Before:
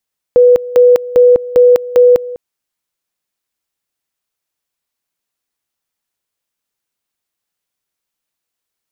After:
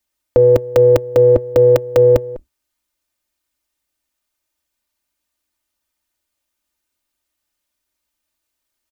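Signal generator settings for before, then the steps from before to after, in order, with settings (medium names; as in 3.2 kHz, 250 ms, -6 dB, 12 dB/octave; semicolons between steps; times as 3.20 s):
two-level tone 492 Hz -3 dBFS, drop 18 dB, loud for 0.20 s, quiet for 0.20 s, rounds 5
octave divider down 2 oct, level 0 dB; comb 3.3 ms, depth 87%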